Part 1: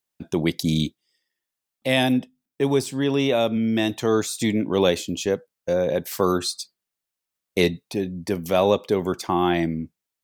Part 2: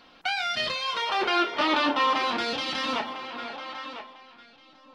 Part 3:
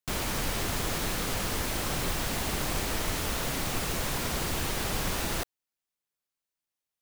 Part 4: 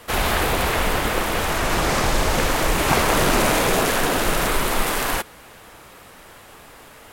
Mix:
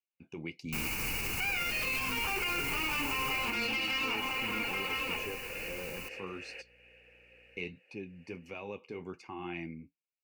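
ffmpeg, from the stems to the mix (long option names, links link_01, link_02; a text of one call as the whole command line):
ffmpeg -i stem1.wav -i stem2.wav -i stem3.wav -i stem4.wav -filter_complex "[0:a]lowpass=4700,alimiter=limit=-13dB:level=0:latency=1:release=57,flanger=delay=8:depth=5.1:regen=-51:speed=1.4:shape=sinusoidal,volume=-14.5dB,asplit=2[link_01][link_02];[1:a]asoftclip=type=tanh:threshold=-26dB,adelay=1150,volume=-1.5dB[link_03];[2:a]aeval=exprs='val(0)+0.00316*(sin(2*PI*60*n/s)+sin(2*PI*2*60*n/s)/2+sin(2*PI*3*60*n/s)/3+sin(2*PI*4*60*n/s)/4+sin(2*PI*5*60*n/s)/5)':channel_layout=same,highshelf=frequency=12000:gain=11,adelay=650,volume=-5.5dB,afade=type=out:start_time=3.26:duration=0.33:silence=0.237137[link_04];[3:a]asplit=3[link_05][link_06][link_07];[link_05]bandpass=frequency=530:width_type=q:width=8,volume=0dB[link_08];[link_06]bandpass=frequency=1840:width_type=q:width=8,volume=-6dB[link_09];[link_07]bandpass=frequency=2480:width_type=q:width=8,volume=-9dB[link_10];[link_08][link_09][link_10]amix=inputs=3:normalize=0,adelay=1400,volume=-7dB[link_11];[link_02]apad=whole_len=375749[link_12];[link_11][link_12]sidechaincompress=threshold=-47dB:ratio=8:attack=16:release=626[link_13];[link_01][link_03][link_04][link_13]amix=inputs=4:normalize=0,superequalizer=8b=0.447:12b=3.98:13b=0.398,alimiter=level_in=0.5dB:limit=-24dB:level=0:latency=1:release=58,volume=-0.5dB" out.wav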